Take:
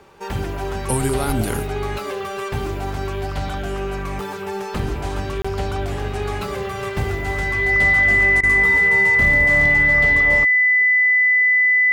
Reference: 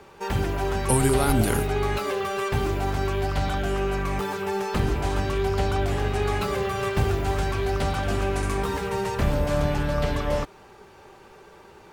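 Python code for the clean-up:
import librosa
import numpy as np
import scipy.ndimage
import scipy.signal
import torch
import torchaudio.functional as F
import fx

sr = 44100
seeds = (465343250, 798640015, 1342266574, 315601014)

y = fx.fix_declip(x, sr, threshold_db=-8.0)
y = fx.notch(y, sr, hz=2000.0, q=30.0)
y = fx.fix_interpolate(y, sr, at_s=(5.42,), length_ms=25.0)
y = fx.fix_interpolate(y, sr, at_s=(8.41,), length_ms=22.0)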